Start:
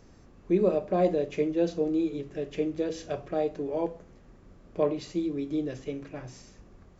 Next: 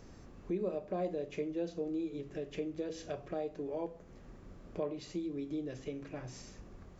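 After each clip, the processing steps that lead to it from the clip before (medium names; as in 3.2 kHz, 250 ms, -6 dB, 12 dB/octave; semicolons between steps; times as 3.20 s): compression 2:1, threshold -44 dBFS, peak gain reduction 13.5 dB; trim +1 dB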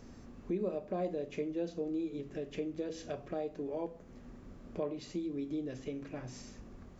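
peaking EQ 240 Hz +9.5 dB 0.22 oct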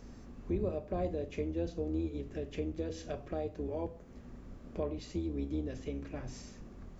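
octave divider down 2 oct, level 0 dB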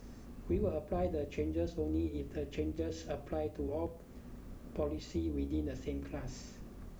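word length cut 12-bit, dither triangular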